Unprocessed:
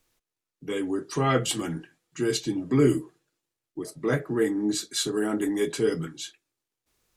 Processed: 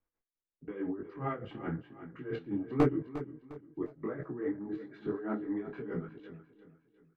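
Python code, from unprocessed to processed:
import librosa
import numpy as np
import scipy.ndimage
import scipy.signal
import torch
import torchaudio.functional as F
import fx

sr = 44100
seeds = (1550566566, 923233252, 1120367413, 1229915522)

y = scipy.signal.sosfilt(scipy.signal.butter(4, 1900.0, 'lowpass', fs=sr, output='sos'), x)
y = fx.level_steps(y, sr, step_db=18)
y = y * (1.0 - 0.77 / 2.0 + 0.77 / 2.0 * np.cos(2.0 * np.pi * 4.7 * (np.arange(len(y)) / sr)))
y = 10.0 ** (-19.0 / 20.0) * (np.abs((y / 10.0 ** (-19.0 / 20.0) + 3.0) % 4.0 - 2.0) - 1.0)
y = fx.echo_feedback(y, sr, ms=354, feedback_pct=37, wet_db=-13.0)
y = fx.detune_double(y, sr, cents=34)
y = y * librosa.db_to_amplitude(7.5)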